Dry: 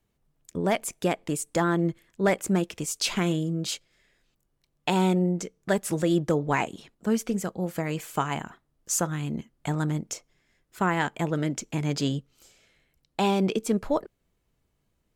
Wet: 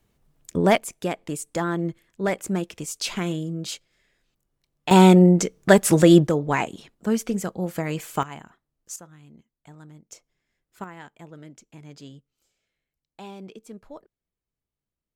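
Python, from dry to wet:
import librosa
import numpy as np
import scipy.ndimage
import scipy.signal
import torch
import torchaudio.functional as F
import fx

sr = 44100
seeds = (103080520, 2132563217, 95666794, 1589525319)

y = fx.gain(x, sr, db=fx.steps((0.0, 7.0), (0.78, -1.5), (4.91, 10.5), (6.27, 2.0), (8.23, -8.5), (8.96, -19.0), (10.12, -9.0), (10.84, -16.5)))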